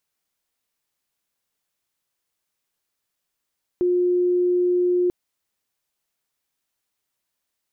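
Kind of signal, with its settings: tone sine 357 Hz -16.5 dBFS 1.29 s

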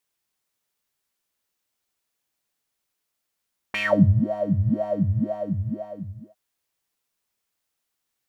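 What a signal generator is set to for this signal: synth patch with filter wobble G#3, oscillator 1 triangle, oscillator 2 square, interval +19 st, oscillator 2 level -11 dB, sub -5.5 dB, noise -16.5 dB, filter bandpass, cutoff 270 Hz, Q 12, filter envelope 3 oct, filter decay 0.19 s, filter sustain 0%, attack 3.7 ms, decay 0.47 s, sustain -11.5 dB, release 1.40 s, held 1.21 s, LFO 2 Hz, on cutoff 1.6 oct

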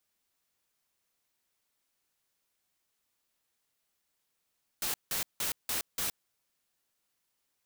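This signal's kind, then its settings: noise bursts white, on 0.12 s, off 0.17 s, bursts 5, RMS -32.5 dBFS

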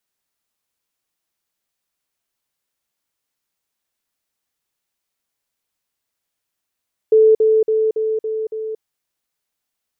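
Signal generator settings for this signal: level ladder 438 Hz -7.5 dBFS, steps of -3 dB, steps 6, 0.23 s 0.05 s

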